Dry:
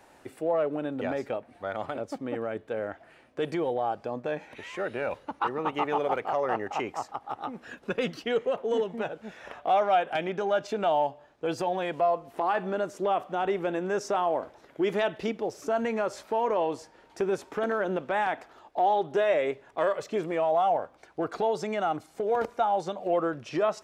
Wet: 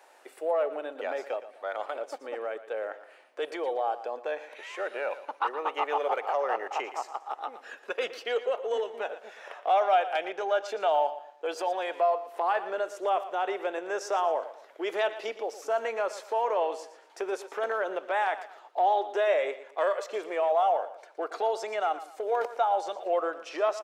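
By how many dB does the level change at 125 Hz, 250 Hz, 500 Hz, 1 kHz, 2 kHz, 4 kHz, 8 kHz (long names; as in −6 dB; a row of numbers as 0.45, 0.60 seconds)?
below −30 dB, −11.0 dB, −1.0 dB, 0.0 dB, 0.0 dB, 0.0 dB, 0.0 dB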